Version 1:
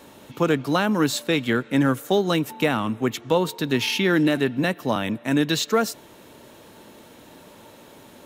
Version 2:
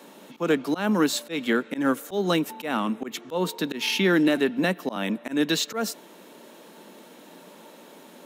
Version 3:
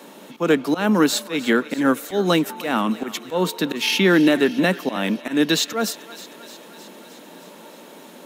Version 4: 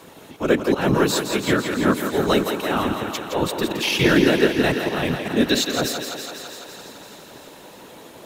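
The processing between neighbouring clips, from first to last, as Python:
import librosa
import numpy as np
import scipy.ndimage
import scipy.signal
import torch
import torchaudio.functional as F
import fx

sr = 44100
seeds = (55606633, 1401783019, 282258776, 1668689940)

y1 = scipy.signal.sosfilt(scipy.signal.cheby1(4, 1.0, 180.0, 'highpass', fs=sr, output='sos'), x)
y1 = fx.auto_swell(y1, sr, attack_ms=136.0)
y2 = fx.echo_thinned(y1, sr, ms=309, feedback_pct=68, hz=690.0, wet_db=-16.0)
y2 = y2 * librosa.db_to_amplitude(5.0)
y3 = fx.whisperise(y2, sr, seeds[0])
y3 = fx.echo_thinned(y3, sr, ms=167, feedback_pct=73, hz=200.0, wet_db=-7)
y3 = y3 * librosa.db_to_amplitude(-1.5)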